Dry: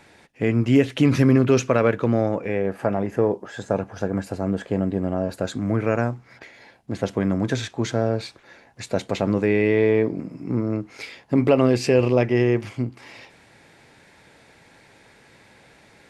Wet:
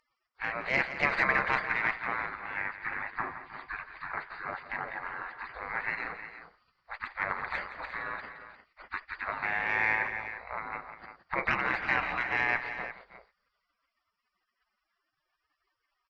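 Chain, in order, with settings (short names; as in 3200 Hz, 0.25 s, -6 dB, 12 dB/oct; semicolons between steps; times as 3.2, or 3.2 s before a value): nonlinear frequency compression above 3600 Hz 4:1; spectral gate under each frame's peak -25 dB weak; added harmonics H 2 -9 dB, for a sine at -18 dBFS; resonant high shelf 2500 Hz -8 dB, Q 3; on a send: tapped delay 0.168/0.314/0.351 s -12.5/-17/-12.5 dB; on the sum: gain +6 dB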